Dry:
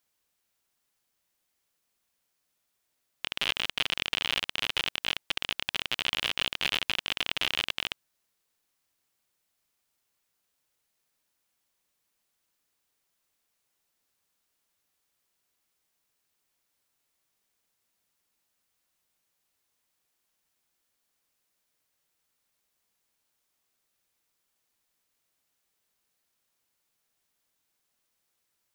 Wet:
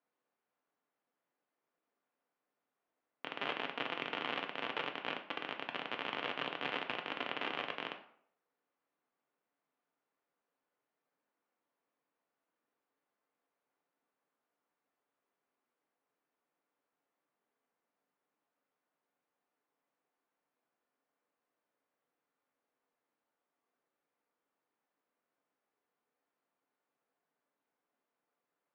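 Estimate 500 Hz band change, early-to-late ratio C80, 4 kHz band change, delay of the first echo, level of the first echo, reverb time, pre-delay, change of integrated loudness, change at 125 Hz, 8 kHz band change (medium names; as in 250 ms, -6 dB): +1.5 dB, 14.0 dB, -14.5 dB, no echo, no echo, 0.65 s, 3 ms, -10.0 dB, -9.5 dB, under -25 dB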